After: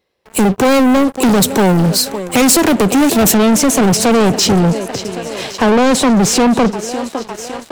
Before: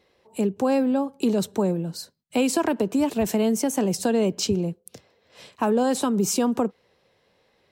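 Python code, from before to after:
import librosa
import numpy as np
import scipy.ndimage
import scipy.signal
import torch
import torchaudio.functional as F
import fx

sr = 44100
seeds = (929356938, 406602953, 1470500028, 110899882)

y = fx.echo_thinned(x, sr, ms=557, feedback_pct=76, hz=320.0, wet_db=-19.5)
y = fx.dynamic_eq(y, sr, hz=1300.0, q=0.83, threshold_db=-37.0, ratio=4.0, max_db=-5)
y = fx.leveller(y, sr, passes=5)
y = fx.high_shelf(y, sr, hz=9900.0, db=fx.steps((0.0, 9.0), (3.32, -4.5), (4.6, -11.5)))
y = fx.doppler_dist(y, sr, depth_ms=0.18)
y = F.gain(torch.from_numpy(y), 4.5).numpy()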